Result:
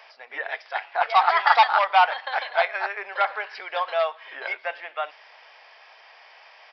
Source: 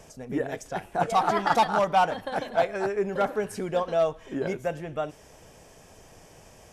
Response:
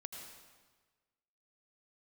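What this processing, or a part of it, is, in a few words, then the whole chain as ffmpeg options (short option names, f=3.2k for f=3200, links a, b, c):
musical greeting card: -af "aresample=11025,aresample=44100,highpass=f=800:w=0.5412,highpass=f=800:w=1.3066,equalizer=f=2.1k:t=o:w=0.46:g=6,volume=7dB"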